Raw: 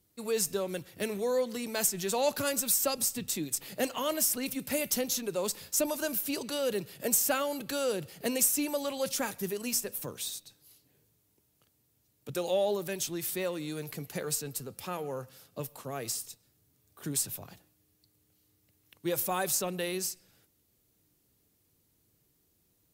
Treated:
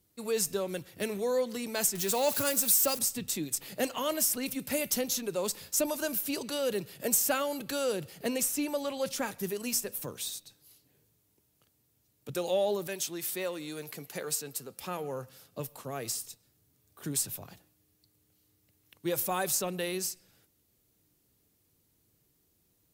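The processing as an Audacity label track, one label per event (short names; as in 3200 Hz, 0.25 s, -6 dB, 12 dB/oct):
1.950000	2.990000	switching spikes of -27.5 dBFS
8.230000	9.400000	high shelf 5400 Hz -6 dB
12.870000	14.820000	HPF 310 Hz 6 dB/oct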